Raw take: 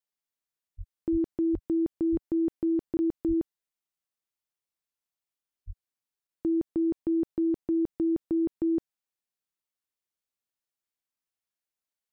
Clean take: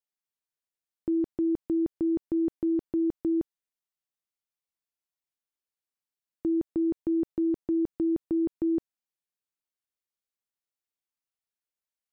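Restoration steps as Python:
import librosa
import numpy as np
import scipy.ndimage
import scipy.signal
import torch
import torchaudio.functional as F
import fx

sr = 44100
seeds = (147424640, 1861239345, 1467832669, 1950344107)

y = fx.fix_deplosive(x, sr, at_s=(0.77, 1.11, 1.52, 2.11, 3.27, 5.66))
y = fx.fix_interpolate(y, sr, at_s=(2.97, 6.27), length_ms=20.0)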